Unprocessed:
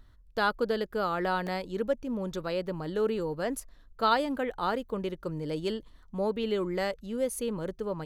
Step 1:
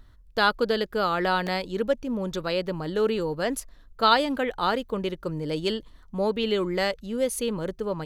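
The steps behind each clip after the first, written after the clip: dynamic bell 3.6 kHz, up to +6 dB, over -48 dBFS, Q 0.72; trim +4 dB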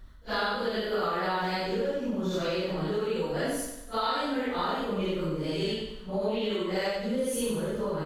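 phase randomisation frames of 200 ms; compression, threshold -30 dBFS, peak gain reduction 14.5 dB; feedback delay 94 ms, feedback 49%, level -7 dB; trim +2.5 dB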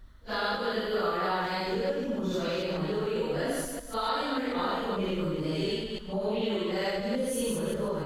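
chunks repeated in reverse 146 ms, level -3.5 dB; trim -2 dB

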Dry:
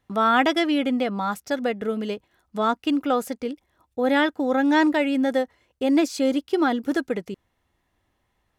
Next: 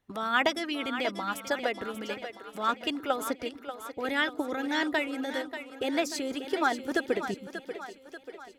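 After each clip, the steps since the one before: harmonic-percussive split harmonic -13 dB; two-band feedback delay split 300 Hz, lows 127 ms, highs 587 ms, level -10 dB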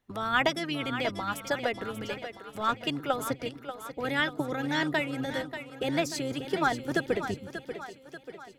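octave divider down 1 oct, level -5 dB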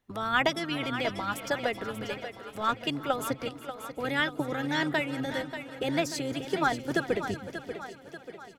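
feedback delay 371 ms, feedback 45%, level -17 dB

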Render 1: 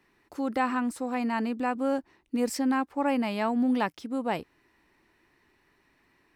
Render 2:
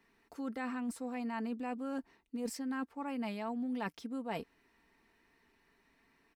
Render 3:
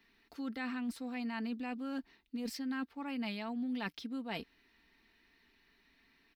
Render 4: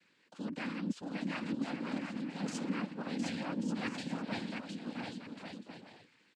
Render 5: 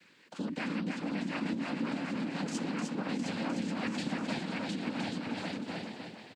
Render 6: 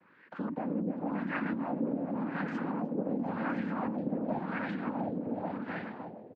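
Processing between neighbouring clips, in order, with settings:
comb 4.4 ms, depth 48%; reverse; compression, threshold -31 dBFS, peak gain reduction 11.5 dB; reverse; trim -4.5 dB
graphic EQ 125/500/1000/4000/8000 Hz -7/-7/-6/+8/-11 dB; trim +3 dB
on a send: bouncing-ball echo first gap 710 ms, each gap 0.6×, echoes 5; on the sum: noise-vocoded speech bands 8
compression, threshold -41 dBFS, peak gain reduction 11.5 dB; feedback delay 305 ms, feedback 24%, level -4 dB; trim +8.5 dB
LFO low-pass sine 0.91 Hz 510–1700 Hz

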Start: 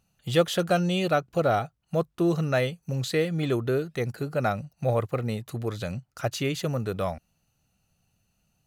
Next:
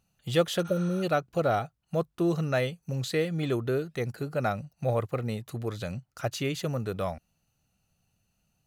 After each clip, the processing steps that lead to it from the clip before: spectral replace 0.68–1.01 s, 660–9800 Hz before; trim -2.5 dB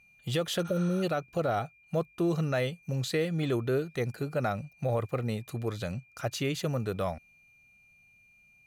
whistle 2.4 kHz -59 dBFS; peak limiter -20 dBFS, peak gain reduction 8 dB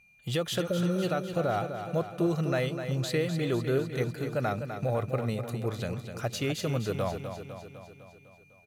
feedback delay 252 ms, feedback 59%, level -8.5 dB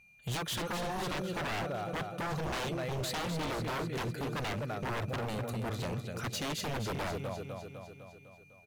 wavefolder -30 dBFS

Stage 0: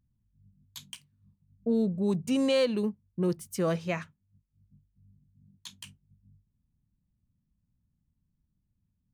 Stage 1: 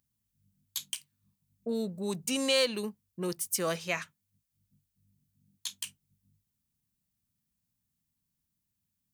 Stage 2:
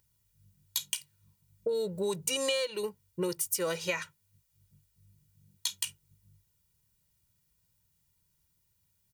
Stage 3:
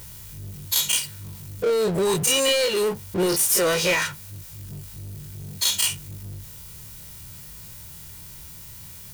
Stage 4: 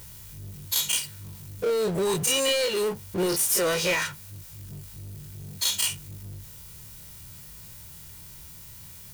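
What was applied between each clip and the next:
tilt EQ +3.5 dB/octave
comb 2.1 ms, depth 91%; compression 8:1, threshold -34 dBFS, peak gain reduction 16 dB; trim +6 dB
every event in the spectrogram widened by 60 ms; power-law waveshaper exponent 0.5
block-companded coder 5-bit; trim -3.5 dB

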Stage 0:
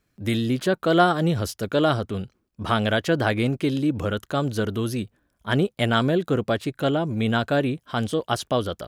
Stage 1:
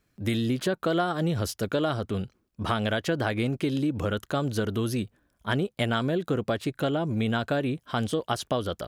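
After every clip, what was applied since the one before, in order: compression 5:1, threshold -23 dBFS, peak gain reduction 10 dB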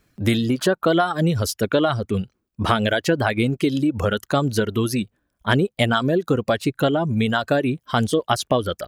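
reverb removal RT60 1.5 s; trim +8.5 dB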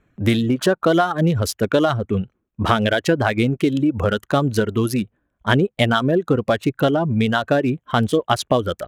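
local Wiener filter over 9 samples; trim +2 dB

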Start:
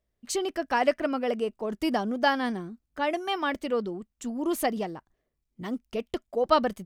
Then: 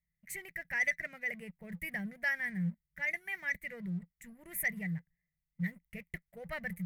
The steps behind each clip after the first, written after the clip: FFT filter 120 Hz 0 dB, 170 Hz +15 dB, 260 Hz -26 dB, 580 Hz -16 dB, 1.2 kHz -25 dB, 2 kHz +14 dB, 3.1 kHz -18 dB, 5 kHz -22 dB, 12 kHz +6 dB; waveshaping leveller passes 1; trim -7.5 dB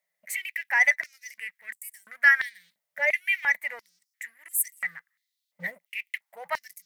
step-sequenced high-pass 2.9 Hz 610–7900 Hz; trim +9 dB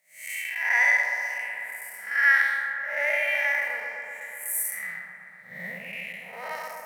spectral blur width 227 ms; on a send: feedback echo behind a low-pass 123 ms, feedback 77%, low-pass 1.4 kHz, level -3 dB; on the sum: trim +7.5 dB

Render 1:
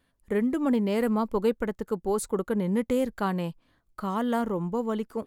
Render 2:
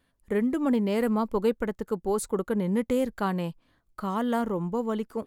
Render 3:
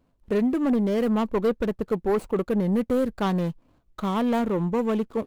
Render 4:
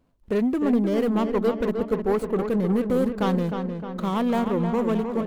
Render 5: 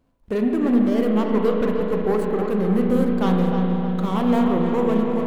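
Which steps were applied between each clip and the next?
no audible change
median filter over 25 samples; in parallel at -1 dB: gain riding 0.5 s; on the sum: saturation -16 dBFS, distortion -17 dB
filtered feedback delay 308 ms, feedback 57%, low-pass 3.2 kHz, level -6.5 dB
spring tank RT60 3.2 s, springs 33/37 ms, chirp 20 ms, DRR 1 dB

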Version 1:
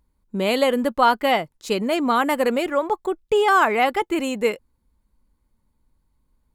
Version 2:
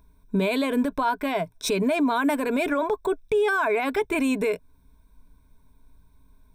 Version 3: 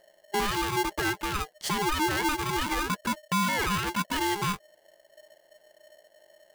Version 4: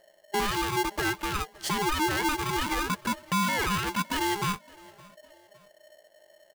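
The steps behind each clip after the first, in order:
rippled EQ curve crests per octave 1.6, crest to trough 14 dB; compression 2:1, threshold -28 dBFS, peak gain reduction 10.5 dB; peak limiter -23 dBFS, peak gain reduction 10 dB; trim +7 dB
polarity switched at an audio rate 610 Hz; trim -4.5 dB
feedback delay 563 ms, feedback 39%, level -24 dB

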